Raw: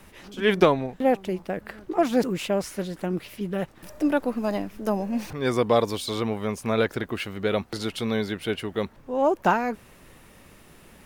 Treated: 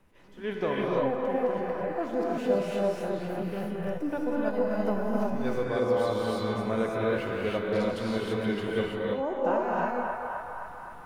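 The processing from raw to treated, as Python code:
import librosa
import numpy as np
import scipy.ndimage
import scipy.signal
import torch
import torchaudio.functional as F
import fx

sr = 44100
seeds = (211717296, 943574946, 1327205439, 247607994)

p1 = fx.level_steps(x, sr, step_db=12)
p2 = x + F.gain(torch.from_numpy(p1), 2.5).numpy()
p3 = fx.high_shelf(p2, sr, hz=2300.0, db=-10.5)
p4 = fx.comb_fb(p3, sr, f0_hz=500.0, decay_s=0.63, harmonics='all', damping=0.0, mix_pct=80)
p5 = p4 + fx.echo_banded(p4, sr, ms=260, feedback_pct=70, hz=1200.0, wet_db=-6.0, dry=0)
p6 = fx.rider(p5, sr, range_db=3, speed_s=0.5)
y = fx.rev_gated(p6, sr, seeds[0], gate_ms=360, shape='rising', drr_db=-4.5)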